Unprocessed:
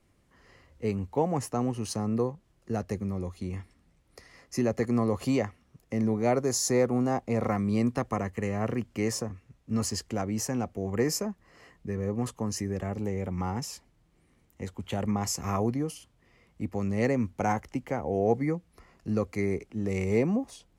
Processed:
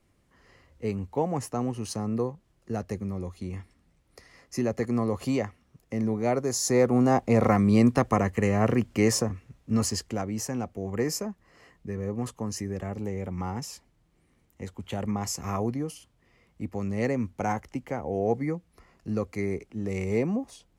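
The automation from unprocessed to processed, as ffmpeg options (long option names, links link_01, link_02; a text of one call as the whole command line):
ffmpeg -i in.wav -af "volume=6.5dB,afade=type=in:start_time=6.57:duration=0.62:silence=0.446684,afade=type=out:start_time=9.28:duration=1.02:silence=0.421697" out.wav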